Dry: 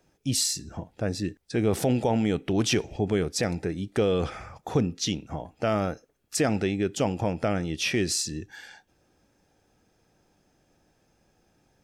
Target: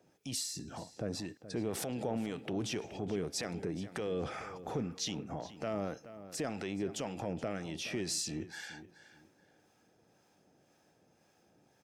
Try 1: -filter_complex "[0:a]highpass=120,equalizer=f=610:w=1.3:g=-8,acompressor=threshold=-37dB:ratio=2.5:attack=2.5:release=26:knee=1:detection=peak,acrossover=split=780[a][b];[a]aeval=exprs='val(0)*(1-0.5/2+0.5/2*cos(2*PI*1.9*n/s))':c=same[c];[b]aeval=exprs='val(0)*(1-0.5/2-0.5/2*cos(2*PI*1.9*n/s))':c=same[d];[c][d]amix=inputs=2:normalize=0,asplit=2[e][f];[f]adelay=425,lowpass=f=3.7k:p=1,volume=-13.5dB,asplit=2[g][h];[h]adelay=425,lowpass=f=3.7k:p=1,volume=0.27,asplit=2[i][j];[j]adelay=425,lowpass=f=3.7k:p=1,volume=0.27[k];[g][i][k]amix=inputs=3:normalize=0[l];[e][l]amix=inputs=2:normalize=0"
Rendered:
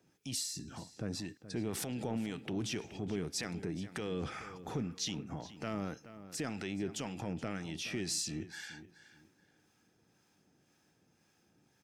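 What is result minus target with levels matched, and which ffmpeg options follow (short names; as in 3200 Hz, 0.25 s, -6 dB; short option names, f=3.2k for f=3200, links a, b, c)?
500 Hz band -3.5 dB
-filter_complex "[0:a]highpass=120,equalizer=f=610:w=1.3:g=2,acompressor=threshold=-37dB:ratio=2.5:attack=2.5:release=26:knee=1:detection=peak,acrossover=split=780[a][b];[a]aeval=exprs='val(0)*(1-0.5/2+0.5/2*cos(2*PI*1.9*n/s))':c=same[c];[b]aeval=exprs='val(0)*(1-0.5/2-0.5/2*cos(2*PI*1.9*n/s))':c=same[d];[c][d]amix=inputs=2:normalize=0,asplit=2[e][f];[f]adelay=425,lowpass=f=3.7k:p=1,volume=-13.5dB,asplit=2[g][h];[h]adelay=425,lowpass=f=3.7k:p=1,volume=0.27,asplit=2[i][j];[j]adelay=425,lowpass=f=3.7k:p=1,volume=0.27[k];[g][i][k]amix=inputs=3:normalize=0[l];[e][l]amix=inputs=2:normalize=0"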